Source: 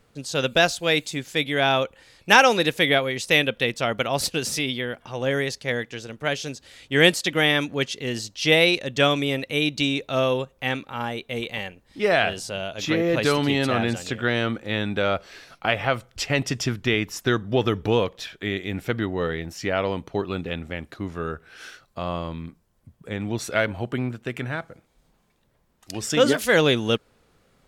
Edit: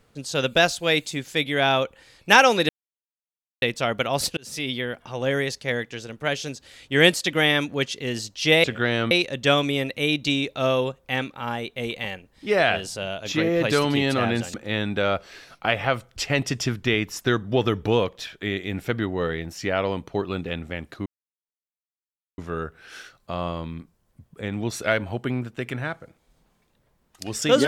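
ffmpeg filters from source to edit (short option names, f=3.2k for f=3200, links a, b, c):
-filter_complex "[0:a]asplit=8[a][b][c][d][e][f][g][h];[a]atrim=end=2.69,asetpts=PTS-STARTPTS,afade=t=out:st=2.686:d=0.004:c=hsin[i];[b]atrim=start=2.69:end=3.62,asetpts=PTS-STARTPTS,volume=0[j];[c]atrim=start=3.62:end=4.37,asetpts=PTS-STARTPTS,afade=t=in:d=0.004:c=hsin,afade=t=out:st=0.746:d=0.004:c=hsin[k];[d]atrim=start=4.37:end=8.642,asetpts=PTS-STARTPTS,afade=t=in:d=0.37[l];[e]atrim=start=14.068:end=14.542[m];[f]atrim=start=8.638:end=14.072[n];[g]atrim=start=14.538:end=21.06,asetpts=PTS-STARTPTS,afade=t=out:st=6.518:d=0.004:c=hsin,apad=pad_dur=1.32[o];[h]atrim=start=21.06,asetpts=PTS-STARTPTS,afade=t=in:d=0.004:c=hsin[p];[i][j][k][l]concat=n=4:v=0:a=1[q];[q][m]acrossfade=d=0.004:c1=hsin:c2=hsin[r];[r][n]acrossfade=d=0.004:c1=hsin:c2=hsin[s];[o][p]concat=n=2:v=0:a=1[t];[s][t]acrossfade=d=0.004:c1=hsin:c2=hsin"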